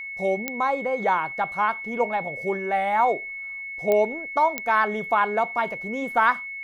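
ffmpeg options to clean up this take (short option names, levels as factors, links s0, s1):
-af "adeclick=t=4,bandreject=f=2200:w=30"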